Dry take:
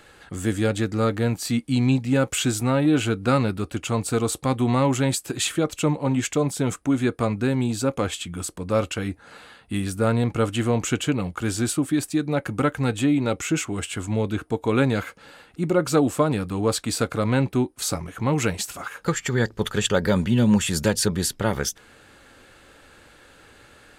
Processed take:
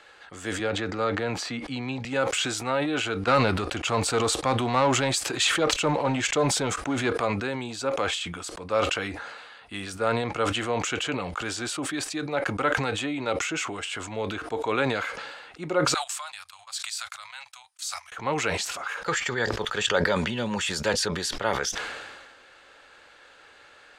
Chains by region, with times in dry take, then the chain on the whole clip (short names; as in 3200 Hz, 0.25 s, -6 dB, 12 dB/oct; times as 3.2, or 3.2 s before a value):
0.59–2.05 LPF 2600 Hz 6 dB/oct + three-band squash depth 70%
3.27–7.13 low shelf 170 Hz +6 dB + sample leveller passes 1
15.94–18.12 inverse Chebyshev band-stop 170–410 Hz, stop band 50 dB + pre-emphasis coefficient 0.97 + gate -49 dBFS, range -30 dB
whole clip: three-band isolator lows -16 dB, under 460 Hz, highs -19 dB, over 6900 Hz; sustainer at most 37 dB/s